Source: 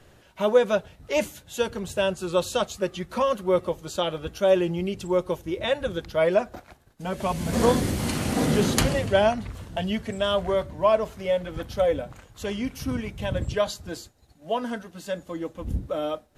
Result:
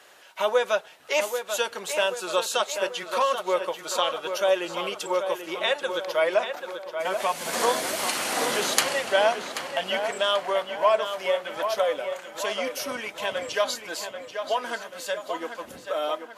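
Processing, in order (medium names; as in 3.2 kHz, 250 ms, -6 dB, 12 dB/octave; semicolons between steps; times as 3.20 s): high-pass 730 Hz 12 dB/octave; in parallel at +0.5 dB: compression, threshold -34 dBFS, peak gain reduction 15 dB; on the sum: tape echo 785 ms, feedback 56%, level -7 dB, low-pass 3.3 kHz; trim +1 dB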